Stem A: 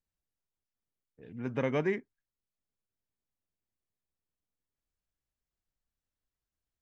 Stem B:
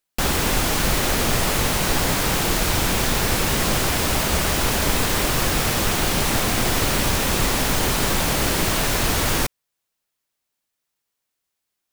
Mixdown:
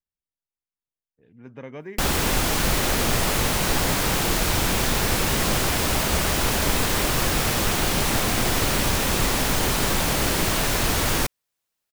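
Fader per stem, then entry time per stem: −7.5, −1.5 decibels; 0.00, 1.80 seconds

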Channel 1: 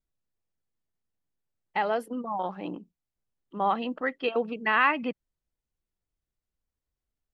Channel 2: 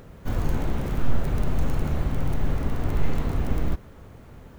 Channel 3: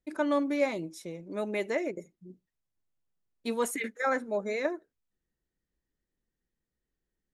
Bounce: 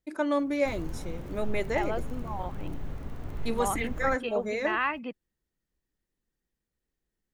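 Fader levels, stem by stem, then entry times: −6.0, −12.5, +0.5 decibels; 0.00, 0.40, 0.00 seconds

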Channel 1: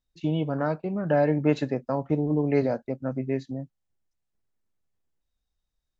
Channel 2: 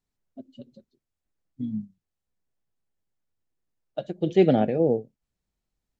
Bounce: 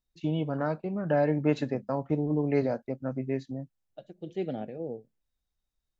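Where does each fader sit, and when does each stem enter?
−3.0, −14.5 decibels; 0.00, 0.00 seconds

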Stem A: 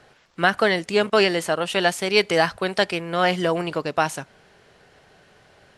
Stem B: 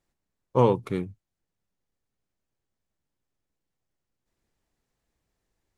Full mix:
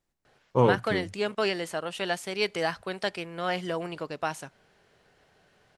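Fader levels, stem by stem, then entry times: −9.5, −1.5 decibels; 0.25, 0.00 seconds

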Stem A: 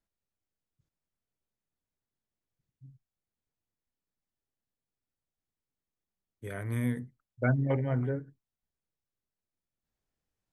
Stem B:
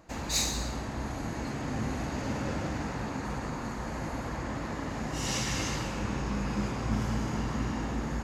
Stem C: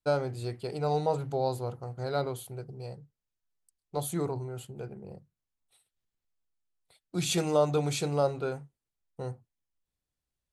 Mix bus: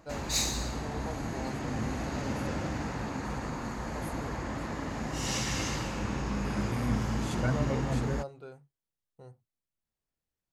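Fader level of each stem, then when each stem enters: −4.0, −0.5, −14.0 decibels; 0.00, 0.00, 0.00 seconds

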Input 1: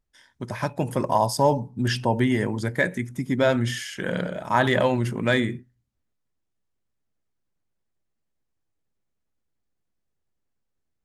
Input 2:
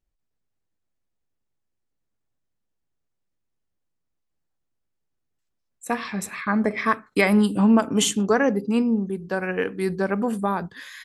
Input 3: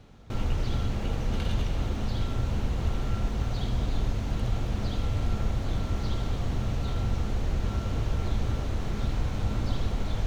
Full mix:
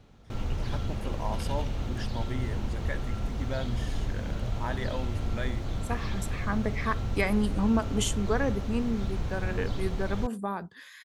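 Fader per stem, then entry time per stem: −15.0, −8.5, −3.5 decibels; 0.10, 0.00, 0.00 seconds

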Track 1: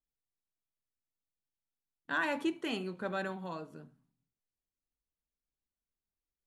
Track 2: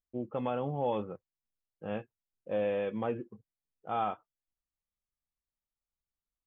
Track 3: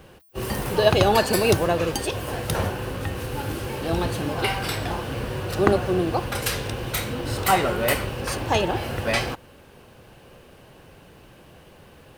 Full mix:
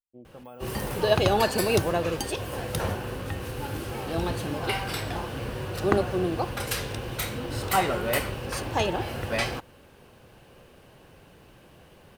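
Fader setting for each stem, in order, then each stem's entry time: muted, −12.0 dB, −4.0 dB; muted, 0.00 s, 0.25 s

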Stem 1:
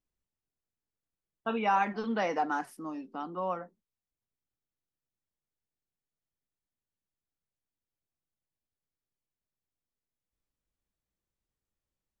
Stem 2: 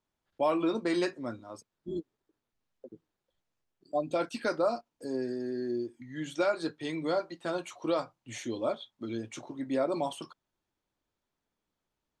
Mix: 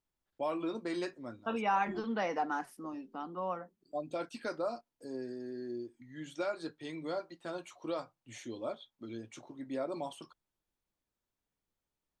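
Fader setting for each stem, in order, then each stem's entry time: −3.5, −7.5 decibels; 0.00, 0.00 seconds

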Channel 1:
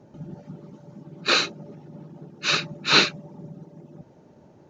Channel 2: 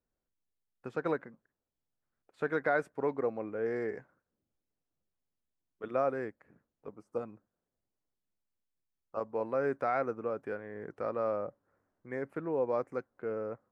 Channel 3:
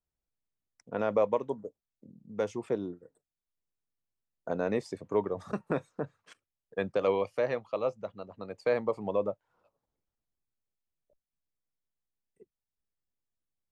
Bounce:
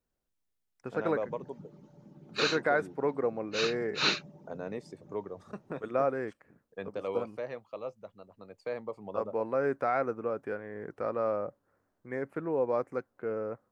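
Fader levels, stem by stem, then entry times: −10.5, +2.0, −8.5 decibels; 1.10, 0.00, 0.00 seconds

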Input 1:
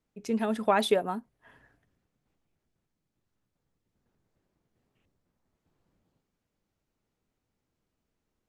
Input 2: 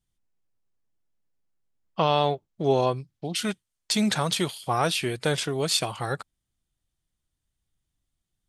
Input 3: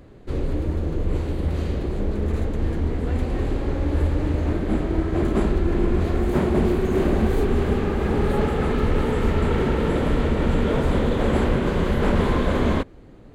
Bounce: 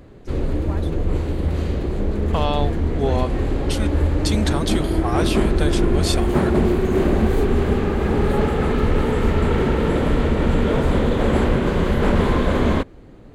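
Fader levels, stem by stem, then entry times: −13.5, −1.0, +2.5 decibels; 0.00, 0.35, 0.00 seconds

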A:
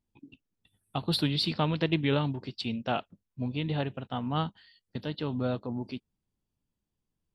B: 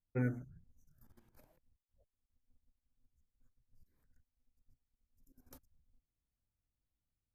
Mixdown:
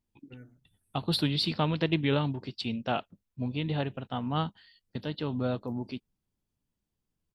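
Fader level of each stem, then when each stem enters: 0.0, −15.5 decibels; 0.00, 0.15 seconds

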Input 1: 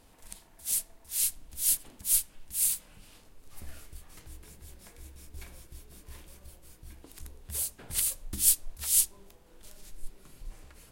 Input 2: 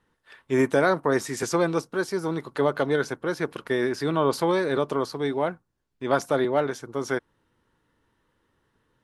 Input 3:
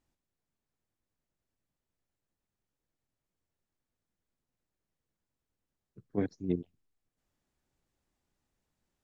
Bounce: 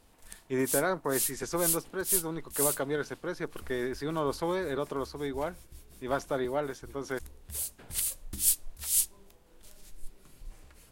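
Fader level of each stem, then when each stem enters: −2.5 dB, −8.0 dB, muted; 0.00 s, 0.00 s, muted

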